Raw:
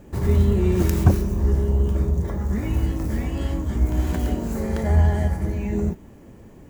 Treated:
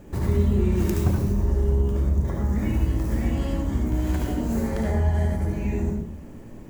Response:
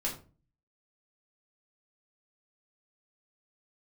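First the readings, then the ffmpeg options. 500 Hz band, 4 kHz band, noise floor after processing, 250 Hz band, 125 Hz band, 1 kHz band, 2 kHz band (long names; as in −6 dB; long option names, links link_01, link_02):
−2.0 dB, −2.5 dB, −40 dBFS, −1.0 dB, −2.5 dB, −2.0 dB, −2.0 dB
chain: -filter_complex "[0:a]acompressor=threshold=-25dB:ratio=2,asplit=2[link_01][link_02];[1:a]atrim=start_sample=2205,asetrate=42777,aresample=44100,adelay=71[link_03];[link_02][link_03]afir=irnorm=-1:irlink=0,volume=-5.5dB[link_04];[link_01][link_04]amix=inputs=2:normalize=0"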